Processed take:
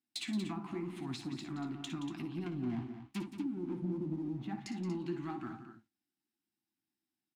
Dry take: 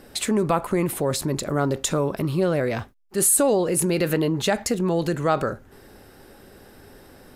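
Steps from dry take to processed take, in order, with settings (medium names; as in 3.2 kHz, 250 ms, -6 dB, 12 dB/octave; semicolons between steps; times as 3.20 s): 2.46–4.47 s: square wave that keeps the level; gate -38 dBFS, range -26 dB; elliptic band-stop 340–740 Hz; low-pass that closes with the level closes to 330 Hz, closed at -16.5 dBFS; high-pass 230 Hz 12 dB/octave; high-order bell 1.1 kHz -9 dB; compression 3:1, threshold -28 dBFS, peak gain reduction 8 dB; waveshaping leveller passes 1; flange 0.91 Hz, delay 7.5 ms, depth 10 ms, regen +51%; multi-tap echo 56/66/174/237 ms -12/-14.5/-11.5/-10.5 dB; trim -7 dB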